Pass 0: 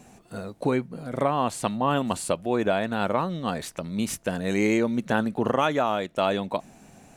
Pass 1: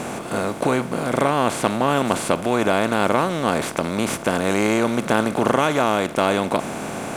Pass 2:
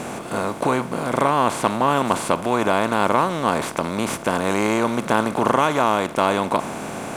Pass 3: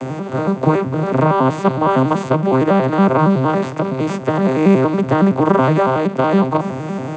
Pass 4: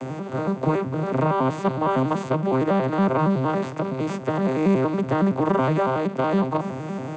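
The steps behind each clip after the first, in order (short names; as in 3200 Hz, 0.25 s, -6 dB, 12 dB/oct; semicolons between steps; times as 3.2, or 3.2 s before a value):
per-bin compression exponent 0.4
dynamic EQ 1000 Hz, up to +7 dB, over -36 dBFS, Q 3; gain -1.5 dB
arpeggiated vocoder minor triad, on C3, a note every 93 ms; gain +6.5 dB
soft clip -3 dBFS, distortion -24 dB; gain -6.5 dB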